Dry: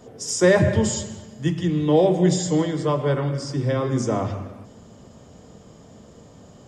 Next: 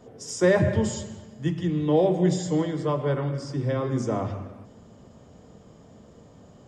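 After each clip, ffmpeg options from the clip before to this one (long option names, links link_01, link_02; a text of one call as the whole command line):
ffmpeg -i in.wav -af "highshelf=frequency=3700:gain=-6.5,volume=-3.5dB" out.wav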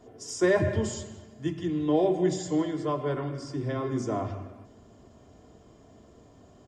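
ffmpeg -i in.wav -af "aecho=1:1:2.9:0.48,volume=-3.5dB" out.wav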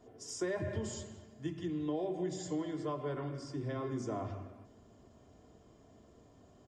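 ffmpeg -i in.wav -af "acompressor=threshold=-26dB:ratio=5,volume=-6.5dB" out.wav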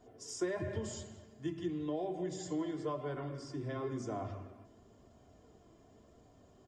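ffmpeg -i in.wav -af "flanger=delay=1.3:depth=1.7:regen=75:speed=0.96:shape=sinusoidal,volume=3.5dB" out.wav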